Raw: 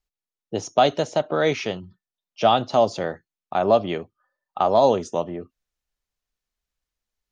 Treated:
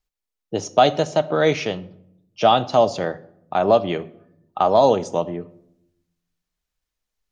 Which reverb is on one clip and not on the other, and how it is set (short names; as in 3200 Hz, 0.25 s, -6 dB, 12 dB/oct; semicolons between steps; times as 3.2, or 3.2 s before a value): shoebox room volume 2000 m³, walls furnished, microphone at 0.52 m; gain +2 dB